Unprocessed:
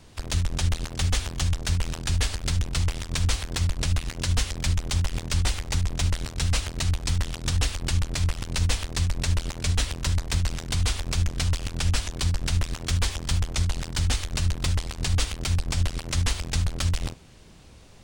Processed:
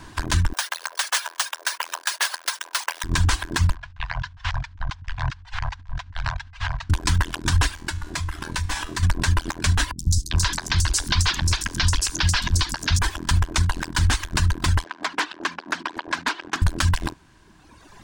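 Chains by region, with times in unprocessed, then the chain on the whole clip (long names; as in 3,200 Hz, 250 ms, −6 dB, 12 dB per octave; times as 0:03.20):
0:00.53–0:03.04: Chebyshev high-pass filter 520 Hz, order 4 + high-shelf EQ 5,300 Hz +11 dB + bad sample-rate conversion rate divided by 3×, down filtered, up hold
0:03.75–0:06.90: elliptic band-stop filter 130–680 Hz + compressor whose output falls as the input rises −35 dBFS + high-frequency loss of the air 200 metres
0:07.74–0:09.03: tuned comb filter 76 Hz, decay 0.62 s, mix 80% + hard clipping −24.5 dBFS + envelope flattener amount 50%
0:09.91–0:12.99: parametric band 5,000 Hz +10.5 dB 1.9 octaves + three-band delay without the direct sound lows, highs, mids 80/400 ms, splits 300/5,400 Hz
0:14.84–0:16.62: high-pass filter 250 Hz 24 dB per octave + high-frequency loss of the air 180 metres + highs frequency-modulated by the lows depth 0.65 ms
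whole clip: reverb reduction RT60 1.8 s; thirty-one-band graphic EQ 315 Hz +8 dB, 500 Hz −8 dB, 1,000 Hz +12 dB, 1,600 Hz +12 dB; brickwall limiter −17 dBFS; level +7 dB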